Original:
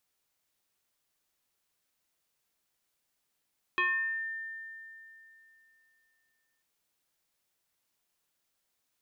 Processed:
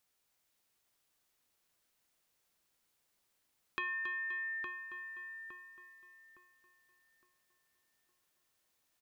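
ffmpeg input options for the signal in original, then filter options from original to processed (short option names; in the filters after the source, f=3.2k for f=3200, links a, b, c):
-f lavfi -i "aevalsrc='0.0631*pow(10,-3*t/3.01)*sin(2*PI*1800*t+1.5*pow(10,-3*t/0.71)*sin(2*PI*0.4*1800*t))':d=2.84:s=44100"
-filter_complex "[0:a]asplit=2[a][b];[b]aecho=0:1:274|524:0.447|0.168[c];[a][c]amix=inputs=2:normalize=0,acompressor=threshold=-38dB:ratio=4,asplit=2[d][e];[e]adelay=862,lowpass=f=1.7k:p=1,volume=-5dB,asplit=2[f][g];[g]adelay=862,lowpass=f=1.7k:p=1,volume=0.38,asplit=2[h][i];[i]adelay=862,lowpass=f=1.7k:p=1,volume=0.38,asplit=2[j][k];[k]adelay=862,lowpass=f=1.7k:p=1,volume=0.38,asplit=2[l][m];[m]adelay=862,lowpass=f=1.7k:p=1,volume=0.38[n];[f][h][j][l][n]amix=inputs=5:normalize=0[o];[d][o]amix=inputs=2:normalize=0"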